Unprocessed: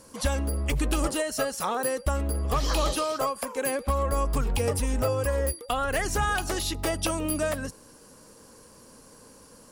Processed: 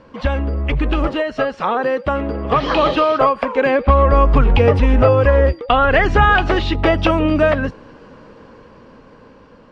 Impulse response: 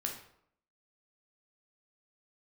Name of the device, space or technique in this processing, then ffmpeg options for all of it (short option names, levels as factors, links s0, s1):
action camera in a waterproof case: -filter_complex "[0:a]highshelf=f=8300:g=6.5,asettb=1/sr,asplit=3[s0][s1][s2];[s0]atrim=end=1.604[s3];[s1]atrim=start=1.6:end=2.95,asetpts=PTS-STARTPTS,afade=t=in:d=0.004:c=qsin,afade=t=out:st=1.346:d=0.004:c=qsin,highpass=130[s4];[s2]atrim=start=2.946[s5];[s3][s4]acrossfade=d=0.004:c1=hsin:c2=qsin[s6];[s6][s5]acrossfade=d=0.004:c1=qsin:c2=hsin,lowpass=f=3000:w=0.5412,lowpass=f=3000:w=1.3066,dynaudnorm=f=630:g=7:m=2,volume=2.51" -ar 22050 -c:a aac -b:a 64k